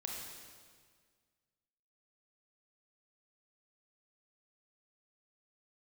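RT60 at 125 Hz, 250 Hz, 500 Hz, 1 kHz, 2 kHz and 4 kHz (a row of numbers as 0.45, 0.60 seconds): 2.0, 1.9, 1.8, 1.7, 1.7, 1.6 seconds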